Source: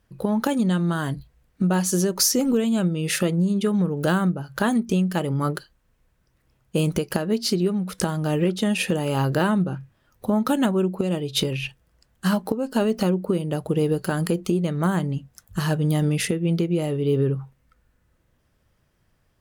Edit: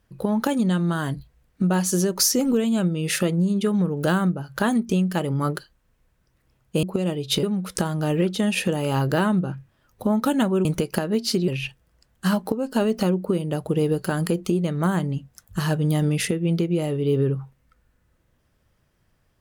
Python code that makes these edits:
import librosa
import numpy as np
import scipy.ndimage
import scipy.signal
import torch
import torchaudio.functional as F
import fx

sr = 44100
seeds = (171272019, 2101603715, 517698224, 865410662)

y = fx.edit(x, sr, fx.swap(start_s=6.83, length_s=0.83, other_s=10.88, other_length_s=0.6), tone=tone)